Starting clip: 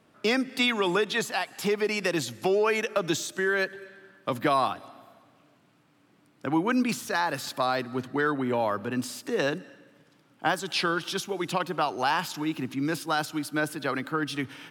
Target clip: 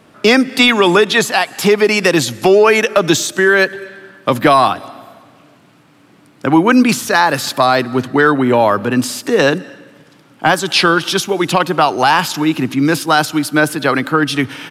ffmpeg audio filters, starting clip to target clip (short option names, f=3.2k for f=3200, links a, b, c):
-af "aresample=32000,aresample=44100,apsyclip=16.5dB,volume=-1.5dB"